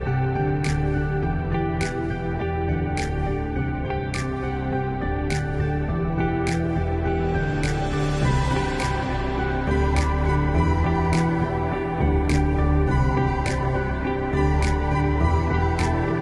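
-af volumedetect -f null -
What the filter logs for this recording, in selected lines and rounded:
mean_volume: -22.1 dB
max_volume: -8.1 dB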